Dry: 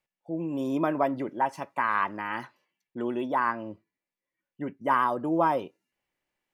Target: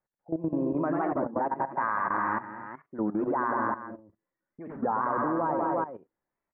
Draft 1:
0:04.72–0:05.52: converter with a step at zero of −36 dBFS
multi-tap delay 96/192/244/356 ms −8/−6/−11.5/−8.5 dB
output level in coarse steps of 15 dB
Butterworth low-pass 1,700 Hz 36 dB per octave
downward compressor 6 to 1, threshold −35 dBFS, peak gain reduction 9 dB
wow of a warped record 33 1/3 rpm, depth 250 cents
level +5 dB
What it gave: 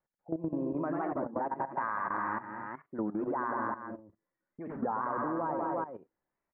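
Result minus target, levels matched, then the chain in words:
downward compressor: peak gain reduction +5.5 dB
0:04.72–0:05.52: converter with a step at zero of −36 dBFS
multi-tap delay 96/192/244/356 ms −8/−6/−11.5/−8.5 dB
output level in coarse steps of 15 dB
Butterworth low-pass 1,700 Hz 36 dB per octave
downward compressor 6 to 1, threshold −28.5 dBFS, peak gain reduction 3.5 dB
wow of a warped record 33 1/3 rpm, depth 250 cents
level +5 dB

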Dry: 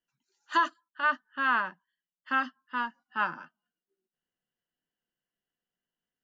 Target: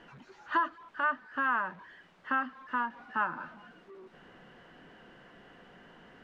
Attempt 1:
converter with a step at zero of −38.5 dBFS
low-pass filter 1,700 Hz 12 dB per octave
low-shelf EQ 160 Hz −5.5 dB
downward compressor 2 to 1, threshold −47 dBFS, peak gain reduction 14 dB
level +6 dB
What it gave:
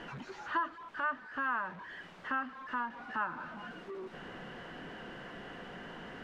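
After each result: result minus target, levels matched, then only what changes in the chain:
converter with a step at zero: distortion +8 dB; downward compressor: peak gain reduction +5 dB
change: converter with a step at zero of −47.5 dBFS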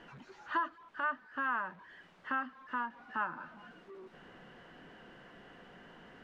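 downward compressor: peak gain reduction +5 dB
change: downward compressor 2 to 1, threshold −37.5 dBFS, peak gain reduction 9 dB

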